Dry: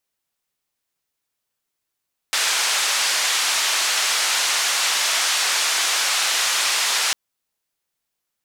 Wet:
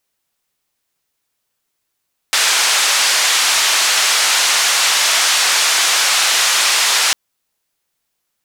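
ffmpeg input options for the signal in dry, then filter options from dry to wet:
-f lavfi -i "anoisesrc=c=white:d=4.8:r=44100:seed=1,highpass=f=890,lowpass=f=6700,volume=-10.1dB"
-af "acontrast=77"

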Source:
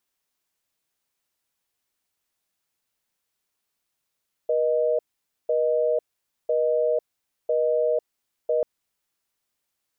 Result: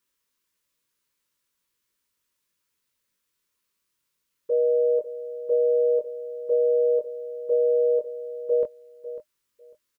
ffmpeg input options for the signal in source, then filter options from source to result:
-f lavfi -i "aevalsrc='0.0794*(sin(2*PI*480*t)+sin(2*PI*620*t))*clip(min(mod(t,1),0.5-mod(t,1))/0.005,0,1)':d=4.14:s=44100"
-filter_complex "[0:a]asuperstop=centerf=730:order=20:qfactor=2.7,asplit=2[s0][s1];[s1]adelay=21,volume=0.631[s2];[s0][s2]amix=inputs=2:normalize=0,aecho=1:1:548|1096:0.211|0.038"

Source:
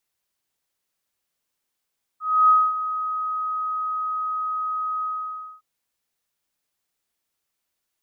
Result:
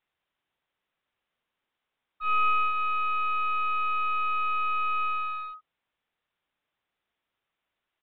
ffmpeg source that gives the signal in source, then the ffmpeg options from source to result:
-f lavfi -i "aevalsrc='0.282*sin(2*PI*1260*t)':d=3.412:s=44100,afade=t=in:d=0.288,afade=t=out:st=0.288:d=0.24:silence=0.237,afade=t=out:st=2.83:d=0.582"
-af "equalizer=f=1200:w=0.54:g=3,acompressor=threshold=0.112:ratio=5,aresample=8000,aeval=exprs='clip(val(0),-1,0.01)':c=same,aresample=44100"

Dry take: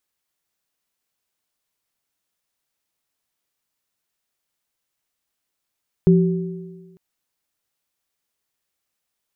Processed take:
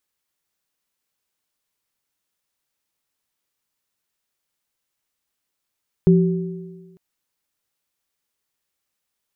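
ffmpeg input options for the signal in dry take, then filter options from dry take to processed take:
-f lavfi -i "aevalsrc='0.355*pow(10,-3*t/1.36)*sin(2*PI*174*t)+0.2*pow(10,-3*t/1.42)*sin(2*PI*381*t)':d=0.9:s=44100"
-af "bandreject=f=690:w=13"

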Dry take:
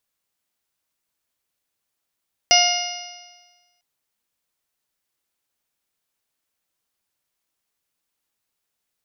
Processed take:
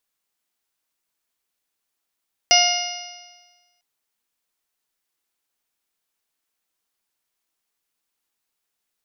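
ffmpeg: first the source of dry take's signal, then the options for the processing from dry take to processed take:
-f lavfi -i "aevalsrc='0.158*pow(10,-3*t/1.31)*sin(2*PI*706.35*t)+0.0316*pow(10,-3*t/1.31)*sin(2*PI*1414.82*t)+0.112*pow(10,-3*t/1.31)*sin(2*PI*2127.51*t)+0.168*pow(10,-3*t/1.31)*sin(2*PI*2846.5*t)+0.0282*pow(10,-3*t/1.31)*sin(2*PI*3573.85*t)+0.0447*pow(10,-3*t/1.31)*sin(2*PI*4311.57*t)+0.188*pow(10,-3*t/1.31)*sin(2*PI*5061.63*t)+0.141*pow(10,-3*t/1.31)*sin(2*PI*5825.93*t)':d=1.3:s=44100"
-af "equalizer=f=100:w=0.89:g=-8,bandreject=f=570:w=12"

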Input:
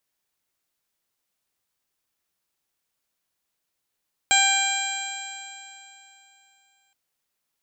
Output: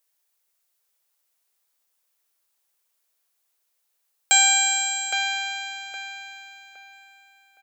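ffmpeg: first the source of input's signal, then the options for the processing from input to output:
-f lavfi -i "aevalsrc='0.0794*pow(10,-3*t/3.03)*sin(2*PI*785.71*t)+0.0708*pow(10,-3*t/3.03)*sin(2*PI*1575.64*t)+0.0841*pow(10,-3*t/3.03)*sin(2*PI*2374*t)+0.0794*pow(10,-3*t/3.03)*sin(2*PI*3184.9*t)+0.0473*pow(10,-3*t/3.03)*sin(2*PI*4012.34*t)+0.0158*pow(10,-3*t/3.03)*sin(2*PI*4860.21*t)+0.01*pow(10,-3*t/3.03)*sin(2*PI*5732.21*t)+0.0211*pow(10,-3*t/3.03)*sin(2*PI*6631.87*t)+0.112*pow(10,-3*t/3.03)*sin(2*PI*7562.52*t)':d=2.62:s=44100"
-filter_complex "[0:a]highpass=f=400:w=0.5412,highpass=f=400:w=1.3066,highshelf=f=6600:g=8.5,asplit=2[s0][s1];[s1]adelay=815,lowpass=f=2700:p=1,volume=0.668,asplit=2[s2][s3];[s3]adelay=815,lowpass=f=2700:p=1,volume=0.34,asplit=2[s4][s5];[s5]adelay=815,lowpass=f=2700:p=1,volume=0.34,asplit=2[s6][s7];[s7]adelay=815,lowpass=f=2700:p=1,volume=0.34[s8];[s2][s4][s6][s8]amix=inputs=4:normalize=0[s9];[s0][s9]amix=inputs=2:normalize=0"

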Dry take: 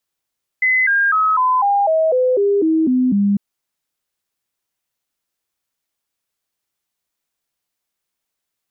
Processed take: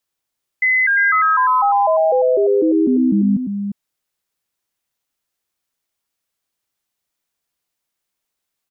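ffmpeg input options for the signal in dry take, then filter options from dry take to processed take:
-f lavfi -i "aevalsrc='0.251*clip(min(mod(t,0.25),0.25-mod(t,0.25))/0.005,0,1)*sin(2*PI*2030*pow(2,-floor(t/0.25)/3)*mod(t,0.25))':d=2.75:s=44100"
-af "aecho=1:1:349:0.422"

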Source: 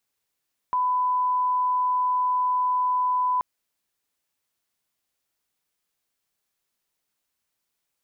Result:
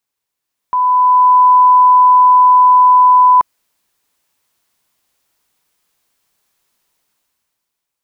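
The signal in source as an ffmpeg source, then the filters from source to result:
-f lavfi -i "sine=f=1000:d=2.68:r=44100,volume=-1.94dB"
-af "equalizer=f=990:t=o:w=0.44:g=3.5,dynaudnorm=f=140:g=13:m=4.47"

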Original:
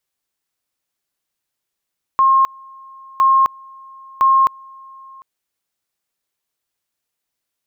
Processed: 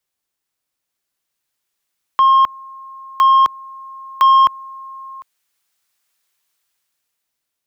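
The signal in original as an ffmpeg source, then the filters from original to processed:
-f lavfi -i "aevalsrc='pow(10,(-9-27.5*gte(mod(t,1.01),0.26))/20)*sin(2*PI*1070*t)':d=3.03:s=44100"
-filter_complex "[0:a]acrossover=split=140|900[s0][s1][s2];[s2]dynaudnorm=f=410:g=7:m=4.22[s3];[s0][s1][s3]amix=inputs=3:normalize=0,asoftclip=type=tanh:threshold=0.473"

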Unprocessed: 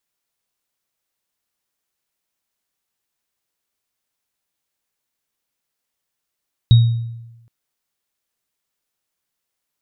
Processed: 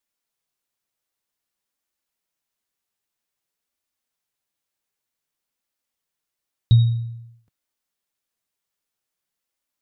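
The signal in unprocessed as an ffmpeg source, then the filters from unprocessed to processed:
-f lavfi -i "aevalsrc='0.631*pow(10,-3*t/1.01)*sin(2*PI*116*t)+0.0944*pow(10,-3*t/0.5)*sin(2*PI*3780*t)':d=0.77:s=44100"
-af "flanger=delay=3.3:depth=6.9:regen=-36:speed=0.52:shape=sinusoidal"

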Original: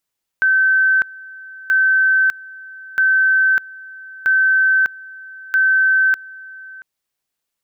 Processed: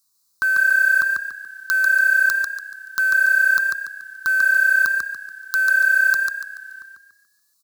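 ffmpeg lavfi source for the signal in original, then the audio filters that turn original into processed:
-f lavfi -i "aevalsrc='pow(10,(-11-22*gte(mod(t,1.28),0.6))/20)*sin(2*PI*1540*t)':d=6.4:s=44100"
-filter_complex "[0:a]firequalizer=gain_entry='entry(340,0);entry(550,-14);entry(780,-8);entry(1100,8);entry(1900,-14);entry(2700,-27);entry(4000,13)':delay=0.05:min_phase=1,acrusher=bits=5:mode=log:mix=0:aa=0.000001,asplit=6[s0][s1][s2][s3][s4][s5];[s1]adelay=143,afreqshift=32,volume=0.708[s6];[s2]adelay=286,afreqshift=64,volume=0.254[s7];[s3]adelay=429,afreqshift=96,volume=0.0923[s8];[s4]adelay=572,afreqshift=128,volume=0.0331[s9];[s5]adelay=715,afreqshift=160,volume=0.0119[s10];[s0][s6][s7][s8][s9][s10]amix=inputs=6:normalize=0"

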